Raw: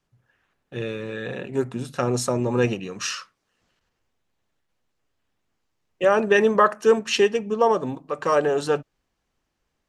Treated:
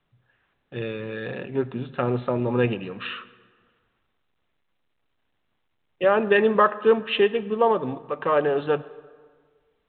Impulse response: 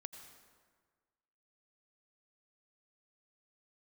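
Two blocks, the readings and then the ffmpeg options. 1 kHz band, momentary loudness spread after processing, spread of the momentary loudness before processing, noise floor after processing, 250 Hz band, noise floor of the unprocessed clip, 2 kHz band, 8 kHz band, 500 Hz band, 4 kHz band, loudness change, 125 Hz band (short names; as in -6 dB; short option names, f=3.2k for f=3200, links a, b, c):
-1.0 dB, 14 LU, 13 LU, -73 dBFS, -1.0 dB, -77 dBFS, -1.0 dB, under -40 dB, -1.0 dB, -2.5 dB, -1.0 dB, -0.5 dB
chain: -filter_complex "[0:a]asplit=2[a][b];[1:a]atrim=start_sample=2205[c];[b][c]afir=irnorm=-1:irlink=0,volume=-4dB[d];[a][d]amix=inputs=2:normalize=0,volume=-3.5dB" -ar 8000 -c:a pcm_mulaw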